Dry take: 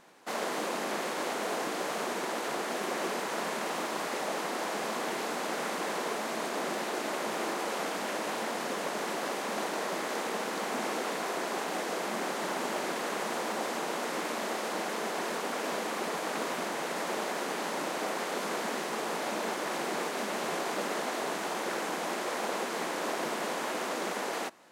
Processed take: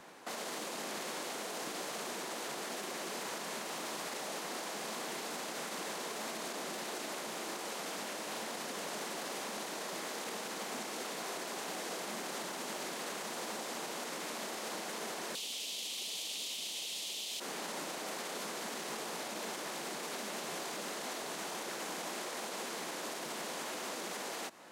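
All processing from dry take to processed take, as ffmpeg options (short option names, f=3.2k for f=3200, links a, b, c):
-filter_complex "[0:a]asettb=1/sr,asplit=3[a][b][c];[a]atrim=end=15.354[d];[b]atrim=start=15.35:end=17.4,asetpts=PTS-STARTPTS,afade=t=in:d=0.004:c=qsin,afade=t=out:st=2.046:d=0.004:c=qsin,highpass=130,highshelf=f=2.2k:t=q:w=3:g=12.5[e];[c]atrim=start=17.396[f];[d][e]acrossfade=d=0.004:c1=hsin:c2=qsin[g];[g][f]acrossfade=d=0.004:c1=qsin:c2=hsin,acrossover=split=130|3000[h][i][j];[i]acompressor=threshold=-40dB:ratio=4[k];[h][k][j]amix=inputs=3:normalize=0,alimiter=level_in=11.5dB:limit=-24dB:level=0:latency=1:release=71,volume=-11.5dB,volume=4dB"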